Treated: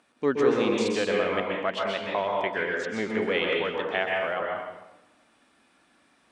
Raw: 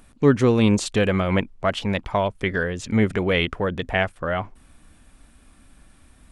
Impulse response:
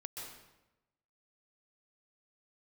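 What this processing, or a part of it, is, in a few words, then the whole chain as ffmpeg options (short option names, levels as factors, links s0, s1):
supermarket ceiling speaker: -filter_complex "[0:a]highpass=340,lowpass=5800[s0];[1:a]atrim=start_sample=2205[s1];[s0][s1]afir=irnorm=-1:irlink=0"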